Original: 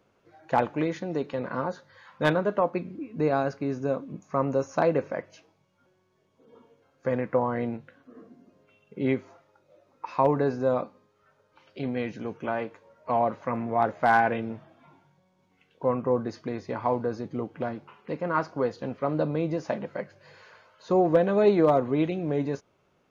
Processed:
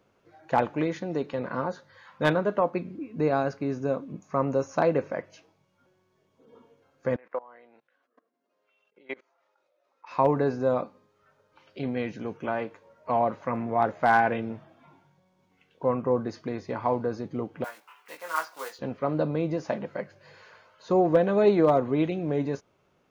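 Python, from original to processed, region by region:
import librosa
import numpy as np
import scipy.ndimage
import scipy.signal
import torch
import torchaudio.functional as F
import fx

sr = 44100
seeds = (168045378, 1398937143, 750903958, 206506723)

y = fx.chain(x, sr, fx.level_steps(step_db=23),
    fx.bandpass_edges(low_hz=620.0, high_hz=6200.0), at=(7.16, 10.11))
y = fx.chain(y, sr, fx.block_float(bits=5),
    fx.highpass(hz=1100.0, slope=12),
    fx.doubler(ms=19.0, db=-3.5), at=(17.64, 18.79))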